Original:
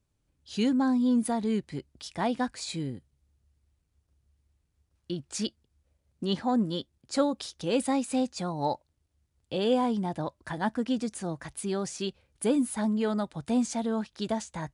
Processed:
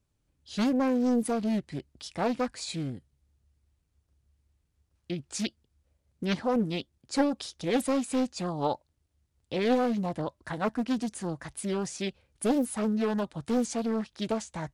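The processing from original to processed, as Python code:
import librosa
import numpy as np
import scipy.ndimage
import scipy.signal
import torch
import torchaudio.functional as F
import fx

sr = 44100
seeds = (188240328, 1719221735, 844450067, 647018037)

y = fx.doppler_dist(x, sr, depth_ms=0.61)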